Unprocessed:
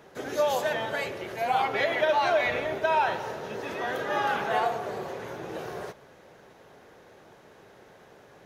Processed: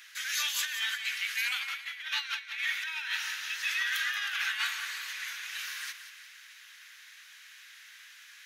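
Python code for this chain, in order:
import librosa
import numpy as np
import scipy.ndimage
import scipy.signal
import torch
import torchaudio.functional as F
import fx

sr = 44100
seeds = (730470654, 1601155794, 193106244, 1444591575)

y = scipy.signal.sosfilt(scipy.signal.cheby2(4, 50, 720.0, 'highpass', fs=sr, output='sos'), x)
y = fx.over_compress(y, sr, threshold_db=-41.0, ratio=-0.5)
y = fx.echo_feedback(y, sr, ms=179, feedback_pct=45, wet_db=-11)
y = y * 10.0 ** (8.0 / 20.0)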